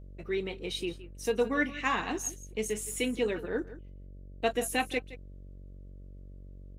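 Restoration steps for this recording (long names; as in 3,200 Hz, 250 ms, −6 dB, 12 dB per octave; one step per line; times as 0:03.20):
hum removal 47 Hz, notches 13
echo removal 167 ms −16 dB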